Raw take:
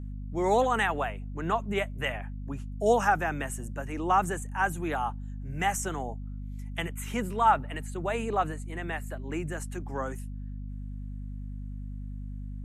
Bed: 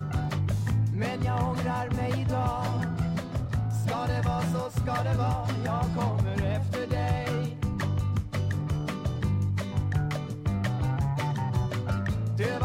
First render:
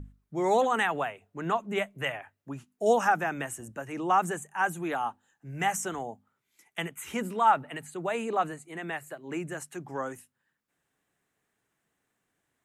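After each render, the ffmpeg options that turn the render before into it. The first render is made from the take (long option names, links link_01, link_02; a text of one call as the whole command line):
ffmpeg -i in.wav -af "bandreject=frequency=50:width_type=h:width=6,bandreject=frequency=100:width_type=h:width=6,bandreject=frequency=150:width_type=h:width=6,bandreject=frequency=200:width_type=h:width=6,bandreject=frequency=250:width_type=h:width=6" out.wav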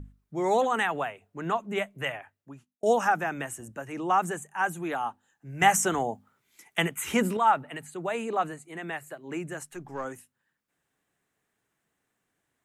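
ffmpeg -i in.wav -filter_complex "[0:a]asettb=1/sr,asplit=3[link_01][link_02][link_03];[link_01]atrim=end=9.654[link_04];[link_02]atrim=start=9.65:end=10.05,asetpts=PTS-STARTPTS,afade=type=in:duration=0.004:curve=qsin,afade=type=out:start_time=0.396:duration=0.004:curve=qsin,aeval=exprs='if(lt(val(0),0),0.708*val(0),val(0))':channel_layout=same[link_05];[link_03]atrim=start=10.046[link_06];[link_04][link_05]acrossfade=duration=0.004:curve1=hsin:curve2=qsin[link_07];[link_07][link_06]acrossfade=duration=0.004:curve1=qsin:curve2=hsin,asplit=4[link_08][link_09][link_10][link_11];[link_08]atrim=end=2.83,asetpts=PTS-STARTPTS,afade=type=out:start_time=2.14:duration=0.69[link_12];[link_09]atrim=start=2.83:end=5.622,asetpts=PTS-STARTPTS,afade=type=in:duration=0.004:curve=hsin[link_13];[link_10]atrim=start=5.618:end=7.372,asetpts=PTS-STARTPTS,volume=7.5dB[link_14];[link_11]atrim=start=7.368[link_15];[link_12][link_13]concat=n=2:v=0:a=1[link_16];[link_16][link_14]acrossfade=duration=0.004:curve1=hsin:curve2=hsin[link_17];[link_17][link_15]acrossfade=duration=0.004:curve1=hsin:curve2=hsin" out.wav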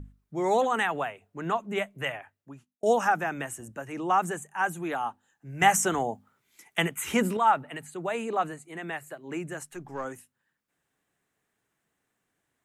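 ffmpeg -i in.wav -af anull out.wav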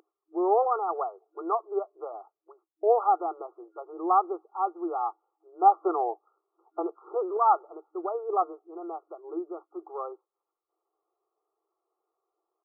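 ffmpeg -i in.wav -af "afftfilt=real='re*between(b*sr/4096,320,1400)':imag='im*between(b*sr/4096,320,1400)':win_size=4096:overlap=0.75,aecho=1:1:2.6:0.41" out.wav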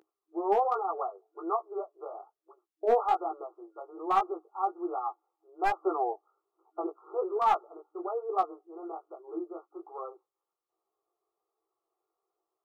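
ffmpeg -i in.wav -af "aeval=exprs='clip(val(0),-1,0.15)':channel_layout=same,flanger=delay=15.5:depth=5.4:speed=1.2" out.wav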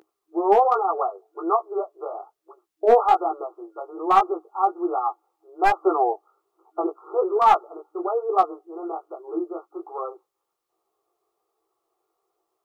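ffmpeg -i in.wav -af "volume=9dB" out.wav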